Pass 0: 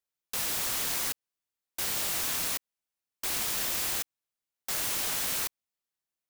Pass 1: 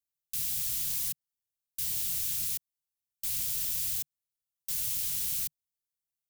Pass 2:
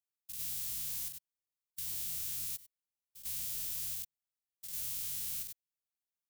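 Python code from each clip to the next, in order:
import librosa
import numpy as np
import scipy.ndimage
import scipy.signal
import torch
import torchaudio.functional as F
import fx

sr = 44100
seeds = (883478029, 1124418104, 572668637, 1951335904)

y1 = fx.curve_eq(x, sr, hz=(150.0, 370.0, 1400.0, 3000.0, 14000.0), db=(0, -27, -20, -8, 1))
y2 = fx.spec_steps(y1, sr, hold_ms=100)
y2 = np.clip(10.0 ** (26.5 / 20.0) * y2, -1.0, 1.0) / 10.0 ** (26.5 / 20.0)
y2 = y2 * 10.0 ** (-5.0 / 20.0)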